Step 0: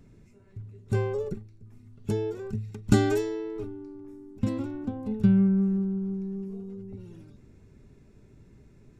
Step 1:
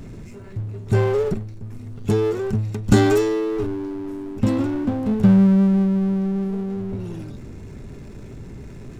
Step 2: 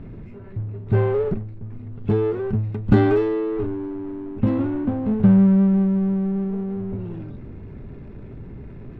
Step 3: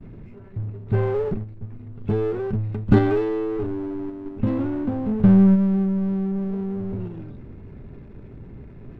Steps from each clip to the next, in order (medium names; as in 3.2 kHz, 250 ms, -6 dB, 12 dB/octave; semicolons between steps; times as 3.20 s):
power-law waveshaper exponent 0.7; trim +3 dB
distance through air 450 m
partial rectifier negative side -3 dB; expander -36 dBFS; in parallel at -1 dB: level held to a coarse grid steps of 16 dB; on the sum: trim -3 dB